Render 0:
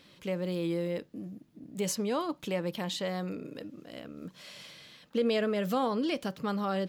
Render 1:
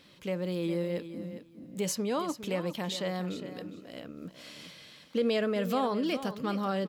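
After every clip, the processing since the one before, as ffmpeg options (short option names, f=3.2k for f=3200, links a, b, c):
-af "aecho=1:1:408|816:0.251|0.0427"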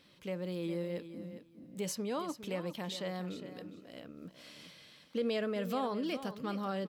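-af "bandreject=f=6.9k:w=18,volume=-5.5dB"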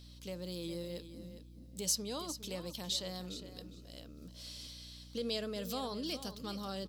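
-af "highshelf=f=3.1k:t=q:w=1.5:g=12,aeval=exprs='val(0)+0.00398*(sin(2*PI*60*n/s)+sin(2*PI*2*60*n/s)/2+sin(2*PI*3*60*n/s)/3+sin(2*PI*4*60*n/s)/4+sin(2*PI*5*60*n/s)/5)':c=same,volume=-5dB"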